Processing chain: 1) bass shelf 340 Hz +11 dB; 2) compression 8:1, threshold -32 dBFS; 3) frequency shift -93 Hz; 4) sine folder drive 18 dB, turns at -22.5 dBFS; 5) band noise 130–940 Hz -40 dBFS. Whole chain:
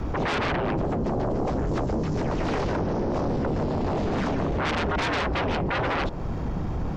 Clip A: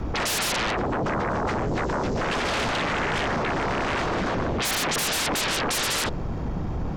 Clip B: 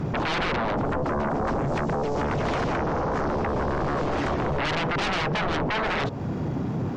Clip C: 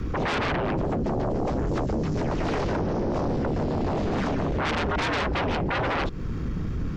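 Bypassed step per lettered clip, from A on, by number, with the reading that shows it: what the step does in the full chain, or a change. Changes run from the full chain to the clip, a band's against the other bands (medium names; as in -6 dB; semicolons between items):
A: 2, 4 kHz band +10.0 dB; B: 3, 250 Hz band -3.0 dB; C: 5, crest factor change -3.5 dB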